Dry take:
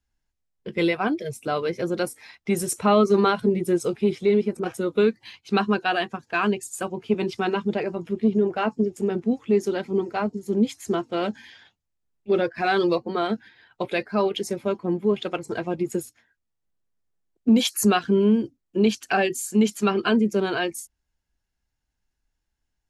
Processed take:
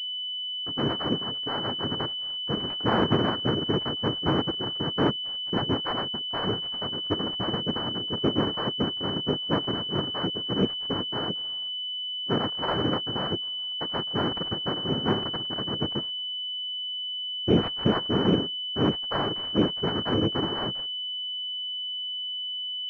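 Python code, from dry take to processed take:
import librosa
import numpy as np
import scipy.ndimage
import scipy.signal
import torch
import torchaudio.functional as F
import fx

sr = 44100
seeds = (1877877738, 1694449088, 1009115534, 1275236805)

y = fx.noise_vocoder(x, sr, seeds[0], bands=3)
y = fx.room_flutter(y, sr, wall_m=9.8, rt60_s=0.49, at=(14.75, 15.23), fade=0.02)
y = fx.pwm(y, sr, carrier_hz=3000.0)
y = F.gain(torch.from_numpy(y), -4.5).numpy()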